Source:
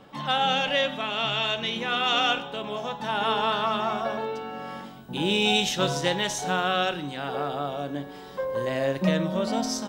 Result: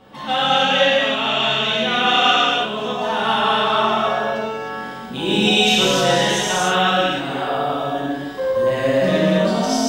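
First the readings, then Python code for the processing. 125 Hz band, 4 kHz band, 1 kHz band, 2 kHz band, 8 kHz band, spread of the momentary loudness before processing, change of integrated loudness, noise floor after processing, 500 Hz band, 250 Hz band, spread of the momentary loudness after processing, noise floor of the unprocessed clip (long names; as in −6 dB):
+6.5 dB, +8.5 dB, +8.5 dB, +9.0 dB, +8.0 dB, 11 LU, +8.5 dB, −31 dBFS, +9.0 dB, +8.0 dB, 10 LU, −42 dBFS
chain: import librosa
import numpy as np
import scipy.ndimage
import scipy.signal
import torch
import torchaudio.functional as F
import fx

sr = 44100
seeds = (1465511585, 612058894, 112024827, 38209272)

y = fx.rev_gated(x, sr, seeds[0], gate_ms=340, shape='flat', drr_db=-8.0)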